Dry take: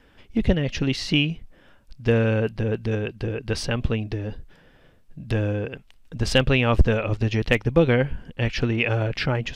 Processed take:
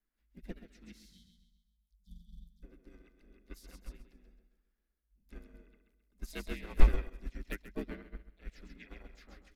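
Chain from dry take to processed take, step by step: notch 2300 Hz, Q 29; harmoniser -4 st -4 dB, +5 st -8 dB; EQ curve 100 Hz 0 dB, 170 Hz -29 dB, 260 Hz -1 dB, 510 Hz -9 dB, 1300 Hz -7 dB, 2100 Hz -3 dB, 3000 Hz -9 dB, 5100 Hz -1 dB, 8200 Hz +3 dB, 12000 Hz +15 dB; frequency shift -57 Hz; in parallel at -6 dB: wavefolder -11 dBFS; on the sum: spectral delete 1–2.63, 230–3000 Hz; on a send: feedback echo 0.133 s, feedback 42%, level -6 dB; on the sum: upward expander 2.5:1, over -24 dBFS; gain -6 dB

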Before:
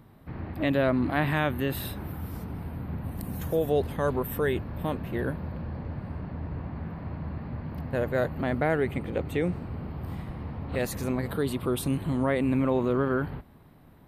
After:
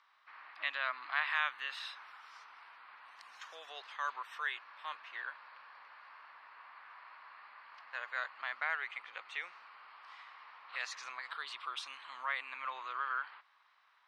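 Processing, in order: Chebyshev band-pass 1100–5800 Hz, order 3; gain -1 dB

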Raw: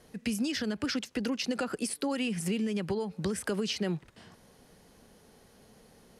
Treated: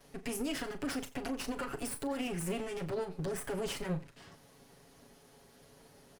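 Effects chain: minimum comb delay 7.2 ms; dynamic EQ 4500 Hz, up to -8 dB, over -53 dBFS, Q 0.93; limiter -28 dBFS, peak gain reduction 6.5 dB; doubler 38 ms -11.5 dB; echo 89 ms -20 dB

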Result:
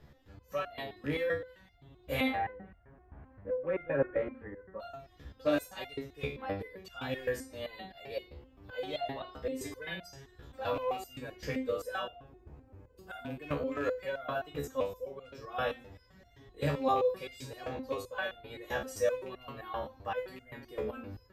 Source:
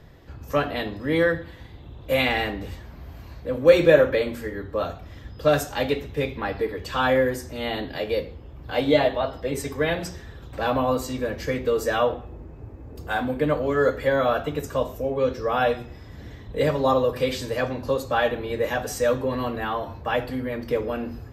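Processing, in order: rattling part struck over -25 dBFS, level -23 dBFS; 2.28–4.8 LPF 1800 Hz 24 dB/oct; stepped resonator 7.7 Hz 71–700 Hz

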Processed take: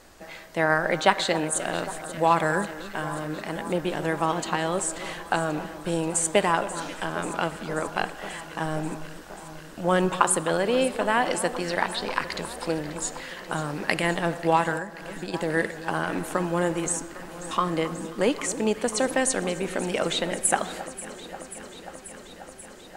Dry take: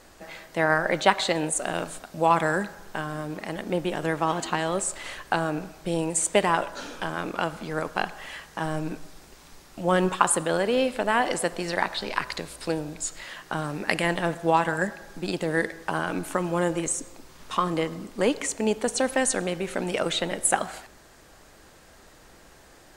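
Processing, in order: on a send: echo with dull and thin repeats by turns 0.268 s, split 1500 Hz, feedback 87%, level -14 dB; 14.77–15.34 on the sum: compressor 10:1, threshold -30 dBFS, peak gain reduction 11 dB

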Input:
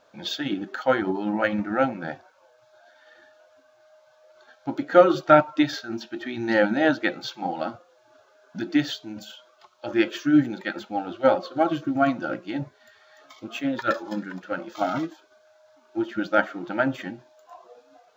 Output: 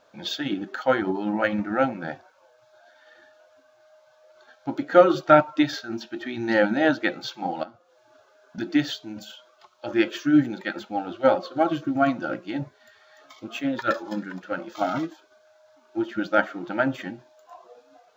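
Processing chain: 7.63–8.58 compressor 8:1, threshold -41 dBFS, peak gain reduction 15 dB

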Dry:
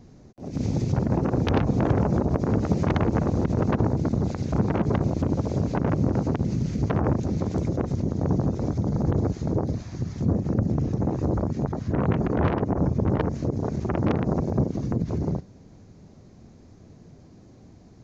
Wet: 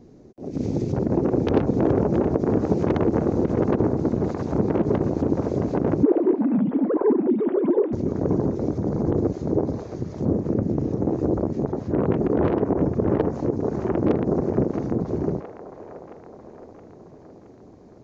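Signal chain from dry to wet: 6.03–7.93 sine-wave speech; bell 380 Hz +12 dB 1.6 oct; band-limited delay 0.67 s, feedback 58%, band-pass 1200 Hz, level -6 dB; gain -5 dB

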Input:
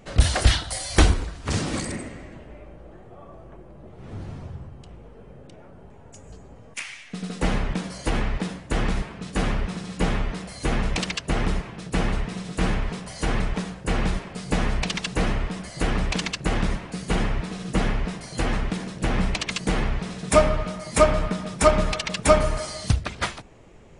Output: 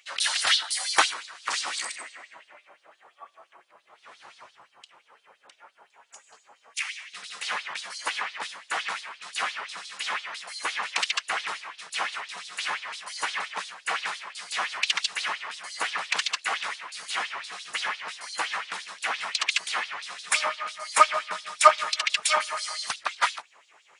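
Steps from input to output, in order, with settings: LFO high-pass sine 5.8 Hz 940–4200 Hz

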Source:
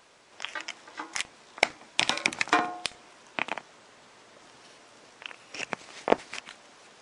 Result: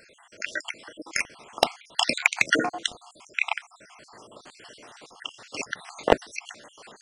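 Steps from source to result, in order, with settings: random spectral dropouts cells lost 59%; hard clip -12.5 dBFS, distortion -11 dB; gain +8 dB

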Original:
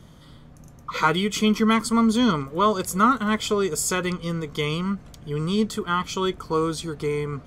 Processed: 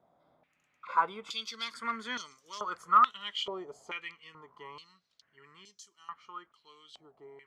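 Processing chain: Doppler pass-by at 2.05, 23 m/s, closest 21 m; overloaded stage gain 13 dB; stepped band-pass 2.3 Hz 720–5800 Hz; gain +3 dB

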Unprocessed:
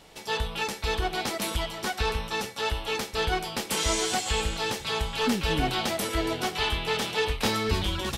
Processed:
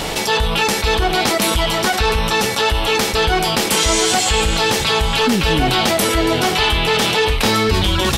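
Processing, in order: fast leveller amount 70%; gain +8 dB

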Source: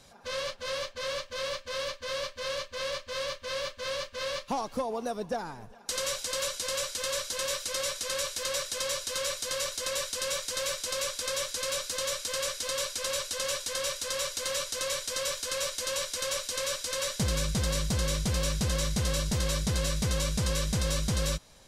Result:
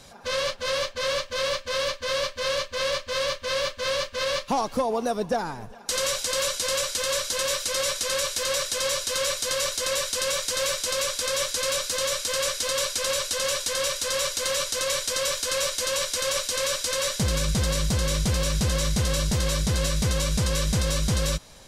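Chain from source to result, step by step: limiter -23.5 dBFS, peak gain reduction 5 dB; gain +7.5 dB

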